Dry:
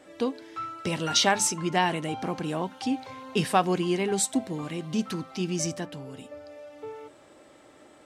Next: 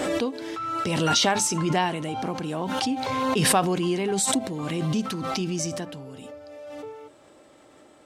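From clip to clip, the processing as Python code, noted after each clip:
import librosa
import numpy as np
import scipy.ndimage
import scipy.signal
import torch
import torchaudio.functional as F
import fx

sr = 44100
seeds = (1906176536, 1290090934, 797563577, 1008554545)

y = fx.peak_eq(x, sr, hz=1900.0, db=-2.5, octaves=0.77)
y = fx.pre_swell(y, sr, db_per_s=20.0)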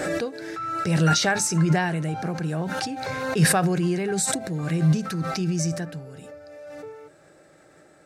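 y = fx.graphic_eq_31(x, sr, hz=(160, 250, 1000, 1600, 3150), db=(10, -9, -10, 8, -11))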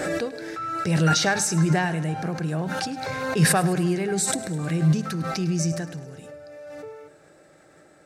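y = fx.echo_feedback(x, sr, ms=104, feedback_pct=60, wet_db=-17)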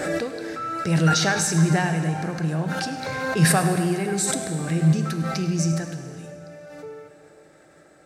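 y = fx.rev_plate(x, sr, seeds[0], rt60_s=2.5, hf_ratio=0.8, predelay_ms=0, drr_db=7.0)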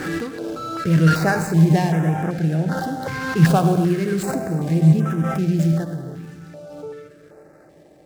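y = scipy.ndimage.median_filter(x, 15, mode='constant')
y = fx.filter_held_notch(y, sr, hz=2.6, low_hz=610.0, high_hz=4300.0)
y = y * librosa.db_to_amplitude(5.0)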